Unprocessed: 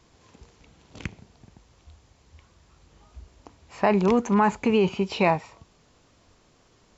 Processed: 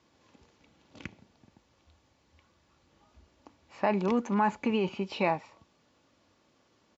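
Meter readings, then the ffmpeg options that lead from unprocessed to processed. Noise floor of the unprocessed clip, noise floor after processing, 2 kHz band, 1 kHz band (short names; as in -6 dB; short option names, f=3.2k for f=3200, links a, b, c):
-61 dBFS, -69 dBFS, -6.0 dB, -5.5 dB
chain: -af "highpass=110,lowpass=5.8k,aecho=1:1:3.5:0.31,volume=-6.5dB"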